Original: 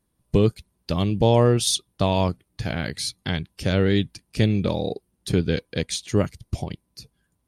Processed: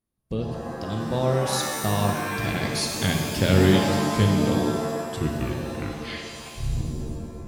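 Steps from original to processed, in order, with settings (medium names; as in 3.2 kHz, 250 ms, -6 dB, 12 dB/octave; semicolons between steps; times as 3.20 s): tape stop on the ending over 2.35 s; Doppler pass-by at 3.22 s, 30 m/s, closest 22 m; pitch-shifted reverb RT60 1.7 s, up +7 st, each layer -2 dB, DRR 2 dB; trim +1 dB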